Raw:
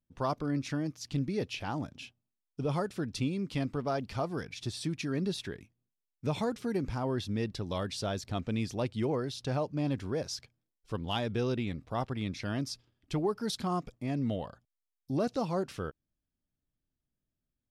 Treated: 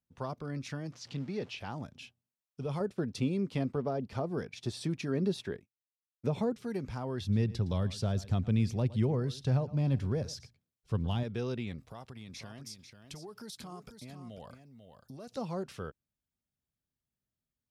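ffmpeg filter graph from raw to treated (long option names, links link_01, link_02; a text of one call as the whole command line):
ffmpeg -i in.wav -filter_complex "[0:a]asettb=1/sr,asplit=3[link_01][link_02][link_03];[link_01]atrim=end=0.924[link_04];[link_02]atrim=start=0.92:end=1.58,asetpts=PTS-STARTPTS,afade=type=in:duration=0.004:curve=qsin,afade=type=out:start_time=0.656:duration=0.004:curve=qsin,aeval=exprs='val(0)+0.5*0.00473*sgn(val(0))':channel_layout=same,highpass=140,lowpass=5600[link_05];[link_03]atrim=start=1.576[link_06];[link_04][link_05]acrossfade=duration=0.004:curve1=hsin:curve2=qsin[link_07];[link_07][link_06]acrossfade=duration=0.004:curve1=qsin:curve2=hsin,asettb=1/sr,asplit=3[link_08][link_09][link_10];[link_08]atrim=end=2.804[link_11];[link_09]atrim=start=2.8:end=6.53,asetpts=PTS-STARTPTS,afade=type=in:duration=0.004:curve=qsin,afade=type=out:start_time=3.726:duration=0.004:curve=qsin,agate=range=-33dB:threshold=-43dB:ratio=3:release=100:detection=peak,equalizer=frequency=440:width=0.4:gain=8[link_12];[link_10]atrim=start=6.526[link_13];[link_11][link_12]acrossfade=duration=0.004:curve1=hsin:curve2=qsin[link_14];[link_14][link_13]acrossfade=duration=0.004:curve1=qsin:curve2=hsin,asettb=1/sr,asplit=3[link_15][link_16][link_17];[link_15]atrim=end=7.214[link_18];[link_16]atrim=start=7.21:end=11.23,asetpts=PTS-STARTPTS,afade=type=in:duration=0.004:curve=qsin,afade=type=out:start_time=4.016:duration=0.004:curve=qsin,equalizer=frequency=88:width_type=o:width=2.9:gain=11.5,aecho=1:1:113:0.112,atrim=end_sample=177282[link_19];[link_17]atrim=start=11.226[link_20];[link_18][link_19]acrossfade=duration=0.004:curve1=hsin:curve2=qsin[link_21];[link_21][link_20]acrossfade=duration=0.004:curve1=qsin:curve2=hsin,asettb=1/sr,asplit=3[link_22][link_23][link_24];[link_22]atrim=end=11.784[link_25];[link_23]atrim=start=11.78:end=15.37,asetpts=PTS-STARTPTS,afade=type=in:duration=0.004:curve=qsin,afade=type=out:start_time=3.586:duration=0.004:curve=qsin,highshelf=frequency=5300:gain=11,acompressor=threshold=-38dB:ratio=12:attack=3.2:release=140:knee=1:detection=peak,aecho=1:1:493:0.376,atrim=end_sample=158319[link_26];[link_24]atrim=start=15.366[link_27];[link_25][link_26]acrossfade=duration=0.004:curve1=hsin:curve2=qsin[link_28];[link_28][link_27]acrossfade=duration=0.004:curve1=qsin:curve2=hsin,highpass=53,acrossover=split=460[link_29][link_30];[link_30]acompressor=threshold=-35dB:ratio=6[link_31];[link_29][link_31]amix=inputs=2:normalize=0,equalizer=frequency=300:width=7.3:gain=-10,volume=-3dB" out.wav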